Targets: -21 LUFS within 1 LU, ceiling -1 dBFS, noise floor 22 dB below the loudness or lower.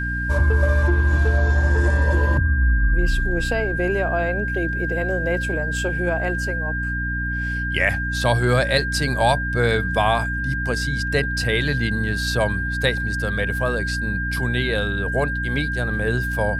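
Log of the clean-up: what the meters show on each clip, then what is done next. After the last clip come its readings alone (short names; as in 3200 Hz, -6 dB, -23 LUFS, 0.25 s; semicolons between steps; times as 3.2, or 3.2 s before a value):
hum 60 Hz; harmonics up to 300 Hz; hum level -24 dBFS; steady tone 1600 Hz; tone level -25 dBFS; loudness -21.0 LUFS; peak -4.0 dBFS; loudness target -21.0 LUFS
-> notches 60/120/180/240/300 Hz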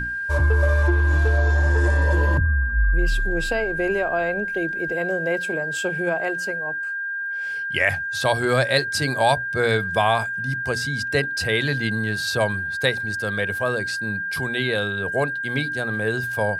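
hum none; steady tone 1600 Hz; tone level -25 dBFS
-> notch 1600 Hz, Q 30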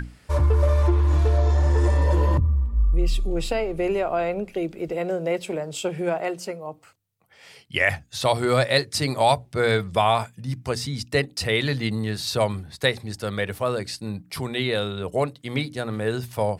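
steady tone none; loudness -24.0 LUFS; peak -4.5 dBFS; loudness target -21.0 LUFS
-> gain +3 dB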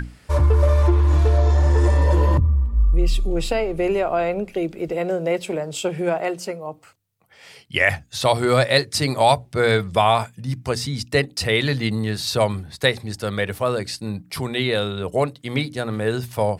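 loudness -21.0 LUFS; peak -1.5 dBFS; noise floor -52 dBFS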